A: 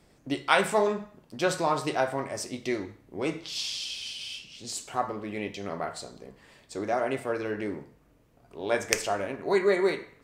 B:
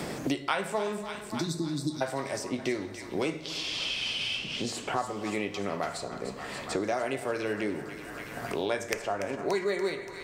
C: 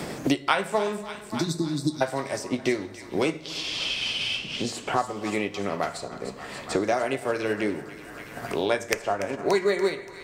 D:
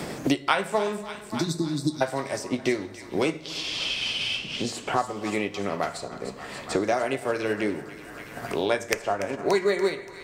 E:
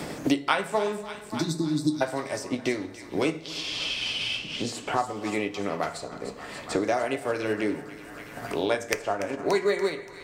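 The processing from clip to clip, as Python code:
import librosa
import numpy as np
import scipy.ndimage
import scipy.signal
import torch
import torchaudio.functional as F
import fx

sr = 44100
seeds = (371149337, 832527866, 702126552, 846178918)

y1 = fx.spec_repair(x, sr, seeds[0], start_s=1.25, length_s=0.74, low_hz=360.0, high_hz=3400.0, source='before')
y1 = fx.echo_split(y1, sr, split_hz=780.0, low_ms=110, high_ms=288, feedback_pct=52, wet_db=-15.0)
y1 = fx.band_squash(y1, sr, depth_pct=100)
y1 = y1 * librosa.db_to_amplitude(-2.0)
y2 = fx.upward_expand(y1, sr, threshold_db=-40.0, expansion=1.5)
y2 = y2 * librosa.db_to_amplitude(7.0)
y3 = y2
y4 = fx.rev_fdn(y3, sr, rt60_s=0.42, lf_ratio=1.0, hf_ratio=0.45, size_ms=20.0, drr_db=12.0)
y4 = y4 * librosa.db_to_amplitude(-1.5)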